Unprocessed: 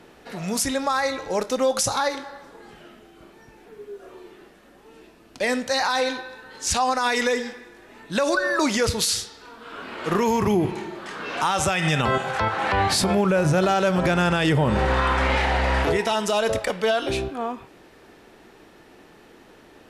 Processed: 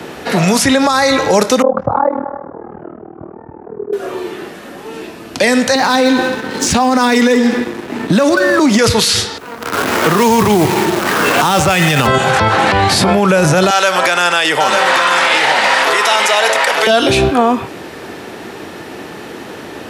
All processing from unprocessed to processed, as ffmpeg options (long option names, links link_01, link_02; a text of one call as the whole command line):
ffmpeg -i in.wav -filter_complex "[0:a]asettb=1/sr,asplit=3[link_01][link_02][link_03];[link_01]atrim=end=1.624[link_04];[link_02]atrim=start=1.62:end=3.93,asetpts=PTS-STARTPTS,afade=type=in:duration=0.004:curve=qsin,afade=type=out:start_time=2.306:duration=0.004:curve=qsin,lowpass=frequency=1100:width=0.5412,lowpass=frequency=1100:width=1.3066,tremolo=f=39:d=0.974[link_05];[link_03]atrim=start=3.926[link_06];[link_04][link_05]acrossfade=duration=0.004:curve1=hsin:curve2=qsin[link_07];[link_07][link_06]acrossfade=duration=0.004:curve1=qsin:curve2=hsin,asettb=1/sr,asplit=3[link_08][link_09][link_10];[link_08]atrim=end=5.754[link_11];[link_09]atrim=start=5.75:end=8.79,asetpts=PTS-STARTPTS,afade=type=in:duration=0.004:curve=qsin,afade=type=out:start_time=3.036:duration=0.004:curve=qsin,equalizer=frequency=240:width_type=o:width=1.8:gain=14,acompressor=threshold=-25dB:ratio=6:attack=3.2:release=140:knee=1:detection=peak,aeval=exprs='sgn(val(0))*max(abs(val(0))-0.00668,0)':channel_layout=same[link_12];[link_10]atrim=start=8.786[link_13];[link_11][link_12]acrossfade=duration=0.004:curve1=hsin:curve2=qsin[link_14];[link_14][link_13]acrossfade=duration=0.004:curve1=qsin:curve2=hsin,asettb=1/sr,asplit=3[link_15][link_16][link_17];[link_15]atrim=end=9.384[link_18];[link_16]atrim=start=9.38:end=12.07,asetpts=PTS-STARTPTS,afade=type=in:duration=0.004:curve=qsin,afade=type=out:start_time=2.686:duration=0.004:curve=qsin,adynamicsmooth=sensitivity=6.5:basefreq=850,acrusher=bits=7:dc=4:mix=0:aa=0.000001[link_19];[link_17]atrim=start=12.066[link_20];[link_18][link_19]acrossfade=duration=0.004:curve1=hsin:curve2=qsin[link_21];[link_21][link_20]acrossfade=duration=0.004:curve1=qsin:curve2=hsin,asettb=1/sr,asplit=3[link_22][link_23][link_24];[link_22]atrim=end=13.704[link_25];[link_23]atrim=start=13.7:end=16.87,asetpts=PTS-STARTPTS,afade=type=in:duration=0.004:curve=qsin,afade=type=out:start_time=3.166:duration=0.004:curve=qsin,highpass=940,aecho=1:1:901:0.562,atrim=end_sample=139797[link_26];[link_24]atrim=start=16.866[link_27];[link_25][link_26]acrossfade=duration=0.004:curve1=hsin:curve2=qsin[link_28];[link_28][link_27]acrossfade=duration=0.004:curve1=qsin:curve2=hsin,highpass=frequency=73:width=0.5412,highpass=frequency=73:width=1.3066,acrossover=split=260|550|3600[link_29][link_30][link_31][link_32];[link_29]acompressor=threshold=-34dB:ratio=4[link_33];[link_30]acompressor=threshold=-37dB:ratio=4[link_34];[link_31]acompressor=threshold=-31dB:ratio=4[link_35];[link_32]acompressor=threshold=-37dB:ratio=4[link_36];[link_33][link_34][link_35][link_36]amix=inputs=4:normalize=0,alimiter=level_in=22.5dB:limit=-1dB:release=50:level=0:latency=1,volume=-1.5dB" out.wav